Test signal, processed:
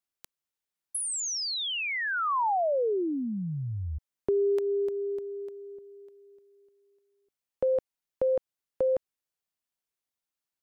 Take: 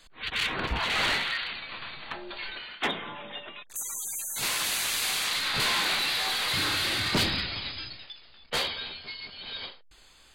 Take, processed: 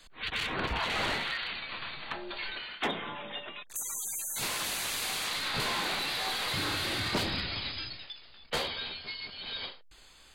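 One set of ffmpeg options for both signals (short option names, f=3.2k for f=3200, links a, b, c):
-filter_complex "[0:a]acrossover=split=440|1000[a][b][c];[a]acompressor=threshold=-33dB:ratio=4[d];[b]acompressor=threshold=-28dB:ratio=4[e];[c]acompressor=threshold=-32dB:ratio=4[f];[d][e][f]amix=inputs=3:normalize=0"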